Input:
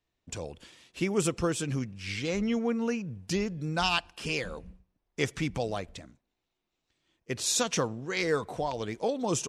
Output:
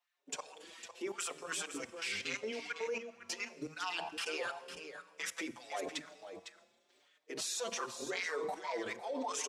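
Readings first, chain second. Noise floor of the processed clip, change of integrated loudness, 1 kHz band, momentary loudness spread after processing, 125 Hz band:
-73 dBFS, -9.0 dB, -7.0 dB, 11 LU, -26.5 dB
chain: de-hum 76.26 Hz, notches 15; reverse; compression 4:1, threshold -39 dBFS, peak gain reduction 14.5 dB; reverse; LFO high-pass sine 2.7 Hz 340–1600 Hz; bands offset in time highs, lows 50 ms, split 210 Hz; level held to a coarse grid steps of 16 dB; on a send: delay 505 ms -9.5 dB; on the sum: Schroeder reverb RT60 2.3 s, combs from 30 ms, DRR 17.5 dB; endless flanger 5.3 ms +0.88 Hz; trim +12.5 dB

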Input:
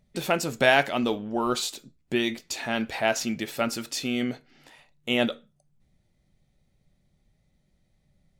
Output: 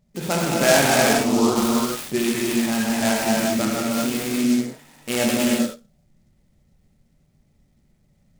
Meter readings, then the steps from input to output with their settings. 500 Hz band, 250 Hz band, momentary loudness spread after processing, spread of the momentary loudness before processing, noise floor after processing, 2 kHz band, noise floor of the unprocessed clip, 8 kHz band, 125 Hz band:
+5.5 dB, +9.5 dB, 8 LU, 11 LU, -63 dBFS, +3.0 dB, -69 dBFS, +11.0 dB, +8.0 dB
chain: gated-style reverb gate 450 ms flat, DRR -6 dB; in parallel at -4.5 dB: sample-rate reducer 13 kHz; on the sum: peaking EQ 210 Hz +5 dB 0.66 oct; delay time shaken by noise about 5.4 kHz, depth 0.064 ms; trim -5 dB

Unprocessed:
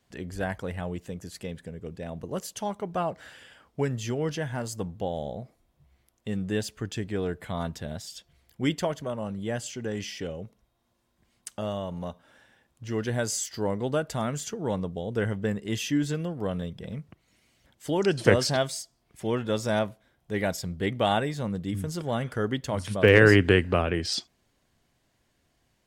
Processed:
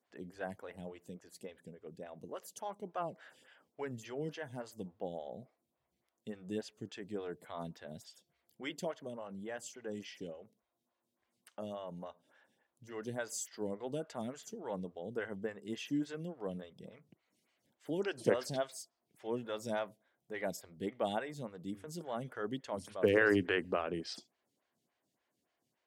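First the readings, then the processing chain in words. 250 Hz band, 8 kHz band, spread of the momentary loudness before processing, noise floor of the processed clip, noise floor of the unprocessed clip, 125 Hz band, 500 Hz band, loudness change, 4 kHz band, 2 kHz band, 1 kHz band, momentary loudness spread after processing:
-11.5 dB, -12.5 dB, 16 LU, -85 dBFS, -72 dBFS, -18.5 dB, -10.0 dB, -11.5 dB, -14.0 dB, -11.0 dB, -10.5 dB, 17 LU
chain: high-pass 160 Hz 12 dB/octave; lamp-driven phase shifter 3.5 Hz; trim -8 dB

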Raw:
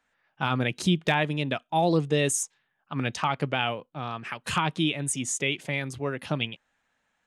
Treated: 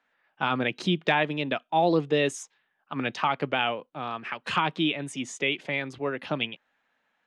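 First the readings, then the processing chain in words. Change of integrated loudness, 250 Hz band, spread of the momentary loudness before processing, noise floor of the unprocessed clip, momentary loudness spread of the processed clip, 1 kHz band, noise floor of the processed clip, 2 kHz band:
0.0 dB, -1.0 dB, 11 LU, -76 dBFS, 11 LU, +1.5 dB, -75 dBFS, +1.0 dB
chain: three-band isolator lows -14 dB, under 190 Hz, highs -21 dB, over 4.9 kHz; trim +1.5 dB

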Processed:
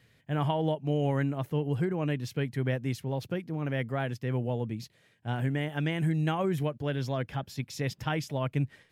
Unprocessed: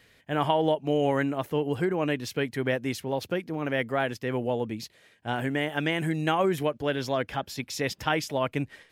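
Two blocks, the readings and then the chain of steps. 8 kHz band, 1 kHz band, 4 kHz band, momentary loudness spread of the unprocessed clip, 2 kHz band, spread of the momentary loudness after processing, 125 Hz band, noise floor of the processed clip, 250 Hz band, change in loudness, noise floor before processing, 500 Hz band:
-7.0 dB, -6.5 dB, -7.0 dB, 8 LU, -7.0 dB, 7 LU, +4.5 dB, -66 dBFS, -2.5 dB, -3.0 dB, -61 dBFS, -6.0 dB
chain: peaking EQ 130 Hz +12.5 dB 1.3 oct; trim -7 dB

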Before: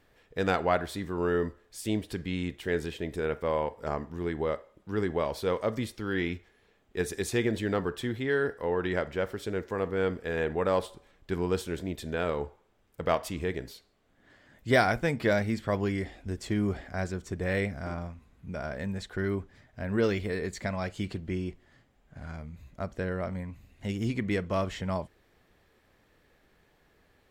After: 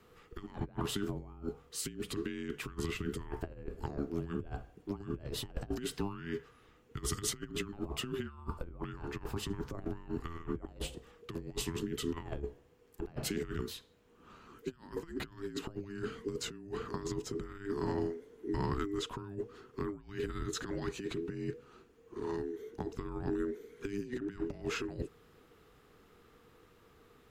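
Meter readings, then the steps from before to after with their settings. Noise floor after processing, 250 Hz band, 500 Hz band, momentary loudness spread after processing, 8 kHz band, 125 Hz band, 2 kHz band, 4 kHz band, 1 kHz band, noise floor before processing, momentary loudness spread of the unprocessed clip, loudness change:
-63 dBFS, -6.5 dB, -10.0 dB, 8 LU, +2.5 dB, -7.5 dB, -13.0 dB, -2.0 dB, -11.5 dB, -66 dBFS, 12 LU, -8.5 dB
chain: frequency shift -500 Hz; compressor with a negative ratio -35 dBFS, ratio -0.5; trim -2.5 dB

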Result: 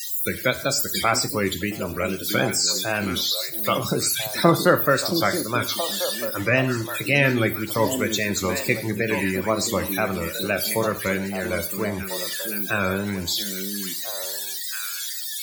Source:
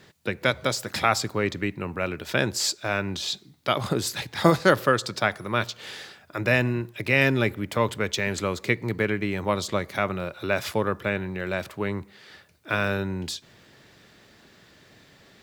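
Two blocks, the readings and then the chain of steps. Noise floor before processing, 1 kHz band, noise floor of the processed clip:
-55 dBFS, +2.0 dB, -32 dBFS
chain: zero-crossing glitches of -14 dBFS; wow and flutter 110 cents; loudest bins only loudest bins 64; repeats whose band climbs or falls 673 ms, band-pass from 270 Hz, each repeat 1.4 oct, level -3.5 dB; gated-style reverb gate 170 ms falling, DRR 8.5 dB; trim +1 dB

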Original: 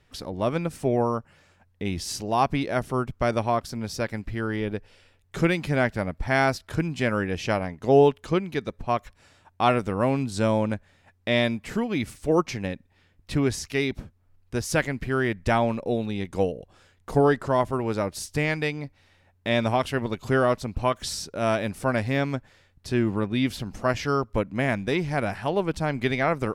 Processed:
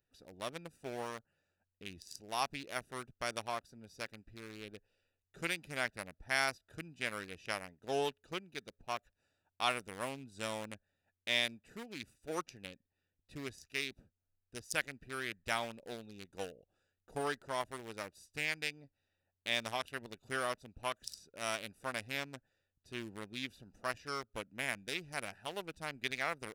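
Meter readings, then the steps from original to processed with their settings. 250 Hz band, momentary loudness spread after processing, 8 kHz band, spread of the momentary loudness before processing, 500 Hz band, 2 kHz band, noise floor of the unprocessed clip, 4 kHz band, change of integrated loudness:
-22.0 dB, 13 LU, -8.5 dB, 8 LU, -18.5 dB, -9.0 dB, -63 dBFS, -5.5 dB, -14.0 dB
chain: local Wiener filter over 41 samples; pre-emphasis filter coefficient 0.97; trim +5 dB

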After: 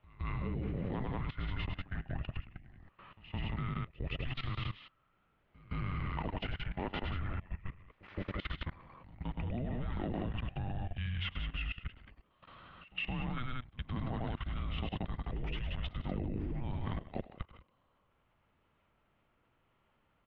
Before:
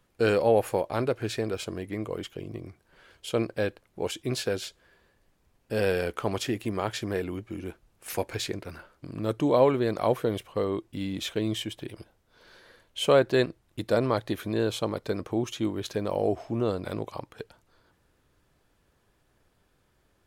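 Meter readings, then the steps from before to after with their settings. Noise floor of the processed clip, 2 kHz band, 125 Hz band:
-74 dBFS, -7.5 dB, -3.0 dB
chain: compression 2:1, threshold -32 dBFS, peak gain reduction 9.5 dB; mistuned SSB -380 Hz 260–3500 Hz; on a send: loudspeakers at several distances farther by 35 m -6 dB, 62 m -5 dB; on the sum: level held to a coarse grid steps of 19 dB; pre-echo 167 ms -22 dB; trim +2 dB

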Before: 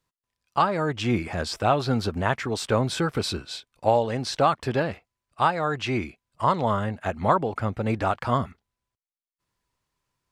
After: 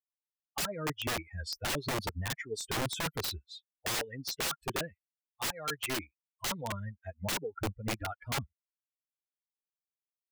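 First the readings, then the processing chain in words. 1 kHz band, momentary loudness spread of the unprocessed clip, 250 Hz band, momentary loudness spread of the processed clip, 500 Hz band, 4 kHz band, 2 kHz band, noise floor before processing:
-16.0 dB, 7 LU, -13.5 dB, 7 LU, -14.5 dB, -3.0 dB, -6.0 dB, under -85 dBFS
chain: expander on every frequency bin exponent 3; integer overflow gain 27.5 dB

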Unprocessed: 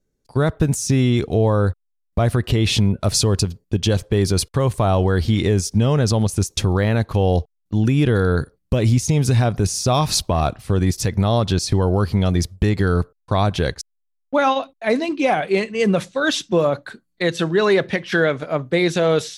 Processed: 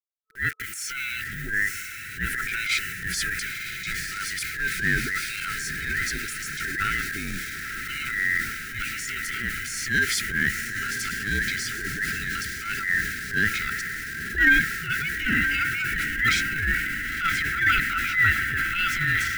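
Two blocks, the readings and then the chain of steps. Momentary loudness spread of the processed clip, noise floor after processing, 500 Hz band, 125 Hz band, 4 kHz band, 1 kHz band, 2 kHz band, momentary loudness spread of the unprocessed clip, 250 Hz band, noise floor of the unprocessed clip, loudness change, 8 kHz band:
9 LU, -36 dBFS, -27.0 dB, -18.5 dB, -5.0 dB, -8.5 dB, +7.0 dB, 6 LU, -16.0 dB, -72 dBFS, -5.5 dB, -5.5 dB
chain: split-band scrambler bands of 500 Hz; on a send: echo that smears into a reverb 946 ms, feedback 74%, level -9.5 dB; on the sum: bit crusher 6-bit; treble shelf 11 kHz +7.5 dB; FFT band-reject 450–1300 Hz; high-order bell 1.5 kHz +15 dB; transient shaper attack -12 dB, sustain +5 dB; trim -8 dB

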